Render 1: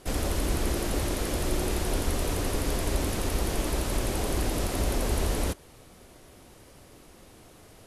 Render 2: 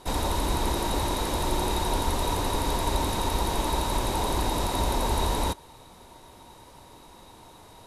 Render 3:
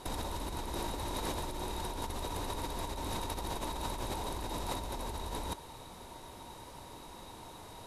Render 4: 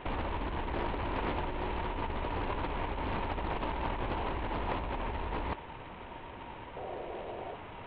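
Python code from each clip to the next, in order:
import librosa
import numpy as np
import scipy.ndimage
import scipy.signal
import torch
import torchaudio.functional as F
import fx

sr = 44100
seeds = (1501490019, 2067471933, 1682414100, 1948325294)

y1 = fx.small_body(x, sr, hz=(930.0, 3800.0), ring_ms=25, db=16)
y2 = fx.over_compress(y1, sr, threshold_db=-32.0, ratio=-1.0)
y2 = y2 * 10.0 ** (-5.5 / 20.0)
y3 = fx.cvsd(y2, sr, bps=16000)
y3 = fx.spec_paint(y3, sr, seeds[0], shape='noise', start_s=6.76, length_s=0.8, low_hz=340.0, high_hz=790.0, level_db=-46.0)
y3 = fx.doppler_dist(y3, sr, depth_ms=0.4)
y3 = y3 * 10.0 ** (4.0 / 20.0)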